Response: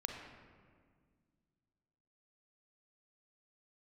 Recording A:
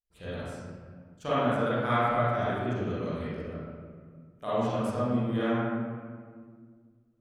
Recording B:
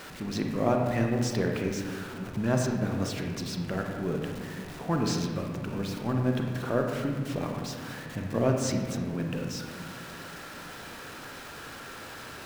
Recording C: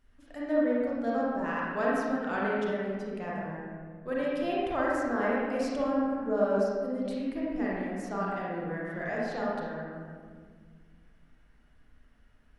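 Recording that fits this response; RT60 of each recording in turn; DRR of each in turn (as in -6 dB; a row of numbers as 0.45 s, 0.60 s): B; 1.8 s, 1.8 s, 1.8 s; -12.5 dB, 2.0 dB, -6.5 dB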